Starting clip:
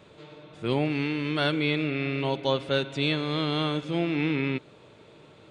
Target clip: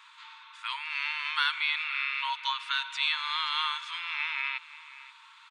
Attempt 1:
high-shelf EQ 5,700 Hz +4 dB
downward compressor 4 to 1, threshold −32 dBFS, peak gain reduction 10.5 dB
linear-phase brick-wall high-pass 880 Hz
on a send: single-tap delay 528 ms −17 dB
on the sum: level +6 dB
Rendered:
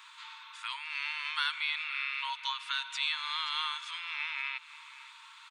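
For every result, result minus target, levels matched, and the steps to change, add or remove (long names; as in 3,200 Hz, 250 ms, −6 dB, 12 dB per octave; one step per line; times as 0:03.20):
downward compressor: peak gain reduction +5.5 dB; 8,000 Hz band +5.5 dB
change: downward compressor 4 to 1, threshold −25 dBFS, peak gain reduction 5.5 dB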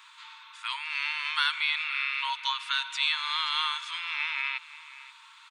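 8,000 Hz band +4.0 dB
change: high-shelf EQ 5,700 Hz −5 dB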